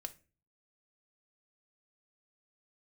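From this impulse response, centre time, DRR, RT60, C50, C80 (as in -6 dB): 4 ms, 6.0 dB, 0.35 s, 17.5 dB, 24.5 dB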